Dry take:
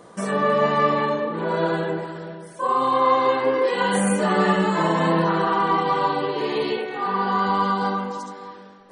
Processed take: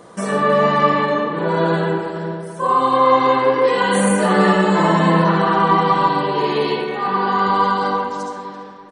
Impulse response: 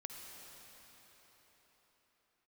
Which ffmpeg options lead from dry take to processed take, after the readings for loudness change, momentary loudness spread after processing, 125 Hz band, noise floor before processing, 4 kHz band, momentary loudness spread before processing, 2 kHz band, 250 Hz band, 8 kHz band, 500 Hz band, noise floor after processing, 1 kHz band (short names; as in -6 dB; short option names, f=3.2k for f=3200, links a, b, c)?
+5.0 dB, 10 LU, +6.5 dB, -44 dBFS, +4.5 dB, 10 LU, +5.0 dB, +5.5 dB, +4.5 dB, +4.5 dB, -34 dBFS, +5.0 dB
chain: -filter_complex "[0:a]asplit=2[a][b];[b]adelay=335,lowpass=f=1.4k:p=1,volume=-9dB,asplit=2[c][d];[d]adelay=335,lowpass=f=1.4k:p=1,volume=0.46,asplit=2[e][f];[f]adelay=335,lowpass=f=1.4k:p=1,volume=0.46,asplit=2[g][h];[h]adelay=335,lowpass=f=1.4k:p=1,volume=0.46,asplit=2[i][j];[j]adelay=335,lowpass=f=1.4k:p=1,volume=0.46[k];[a][c][e][g][i][k]amix=inputs=6:normalize=0[l];[1:a]atrim=start_sample=2205,afade=t=out:st=0.19:d=0.01,atrim=end_sample=8820[m];[l][m]afir=irnorm=-1:irlink=0,volume=9dB"